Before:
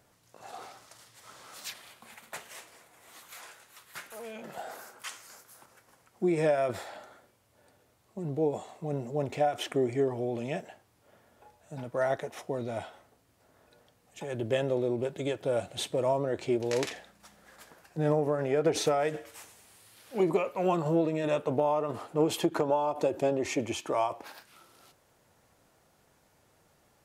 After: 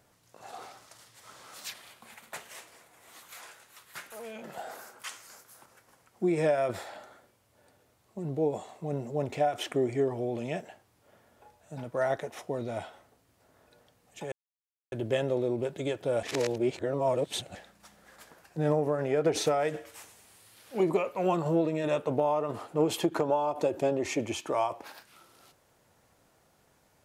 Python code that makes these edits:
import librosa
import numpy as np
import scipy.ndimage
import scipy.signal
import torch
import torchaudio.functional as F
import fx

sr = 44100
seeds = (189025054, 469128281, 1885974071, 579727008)

y = fx.edit(x, sr, fx.insert_silence(at_s=14.32, length_s=0.6),
    fx.reverse_span(start_s=15.63, length_s=1.32), tone=tone)